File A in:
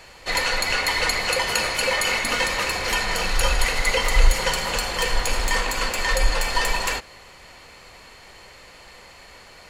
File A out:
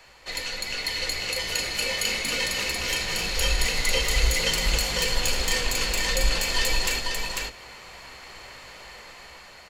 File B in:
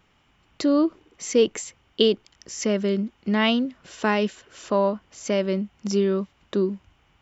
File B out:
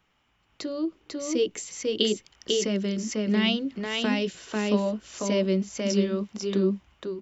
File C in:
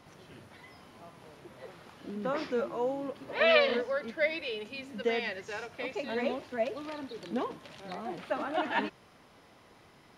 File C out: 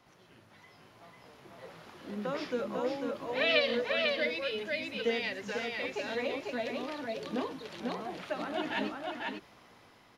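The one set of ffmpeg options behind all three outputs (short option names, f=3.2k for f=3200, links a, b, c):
-filter_complex "[0:a]aecho=1:1:496:0.631,acrossover=split=570|2200[a][b][c];[a]flanger=delay=15.5:depth=3.8:speed=0.74[d];[b]acompressor=threshold=-41dB:ratio=5[e];[d][e][c]amix=inputs=3:normalize=0,equalizer=f=9.3k:w=2.9:g=-4.5,dynaudnorm=f=440:g=7:m=7.5dB,volume=-5.5dB"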